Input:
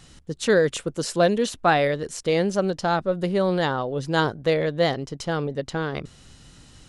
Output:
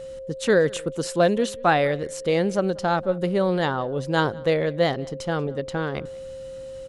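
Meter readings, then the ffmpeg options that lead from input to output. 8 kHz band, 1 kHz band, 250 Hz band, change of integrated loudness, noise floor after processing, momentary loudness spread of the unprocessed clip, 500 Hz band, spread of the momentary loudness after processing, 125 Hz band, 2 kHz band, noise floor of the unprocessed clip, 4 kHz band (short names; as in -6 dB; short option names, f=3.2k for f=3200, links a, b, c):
-2.0 dB, 0.0 dB, 0.0 dB, 0.0 dB, -37 dBFS, 8 LU, +0.5 dB, 11 LU, 0.0 dB, -0.5 dB, -51 dBFS, -2.0 dB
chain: -filter_complex "[0:a]equalizer=f=5.2k:w=1.2:g=-3.5,asplit=2[a][b];[b]adelay=186.6,volume=-24dB,highshelf=f=4k:g=-4.2[c];[a][c]amix=inputs=2:normalize=0,aeval=exprs='val(0)+0.02*sin(2*PI*530*n/s)':c=same"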